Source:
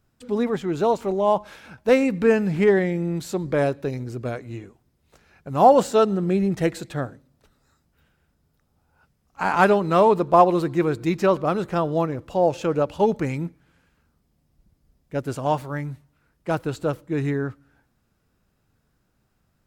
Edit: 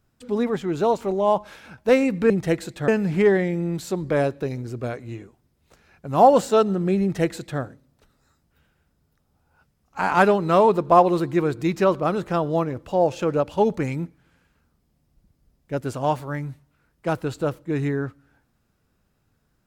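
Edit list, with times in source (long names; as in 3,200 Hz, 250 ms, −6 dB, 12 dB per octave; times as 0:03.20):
0:06.44–0:07.02: duplicate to 0:02.30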